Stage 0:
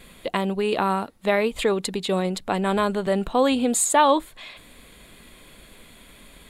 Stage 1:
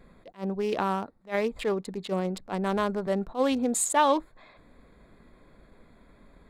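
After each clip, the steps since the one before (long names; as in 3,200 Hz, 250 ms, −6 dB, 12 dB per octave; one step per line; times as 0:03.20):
adaptive Wiener filter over 15 samples
level that may rise only so fast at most 300 dB per second
level −4.5 dB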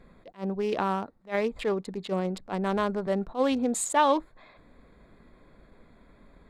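high-shelf EQ 9,700 Hz −9.5 dB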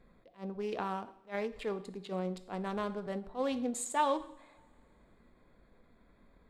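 coupled-rooms reverb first 0.63 s, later 3 s, from −25 dB, DRR 9.5 dB
every ending faded ahead of time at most 210 dB per second
level −8.5 dB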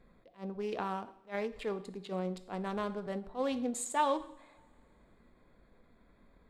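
no processing that can be heard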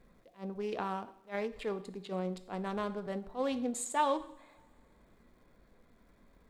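surface crackle 520 per second −67 dBFS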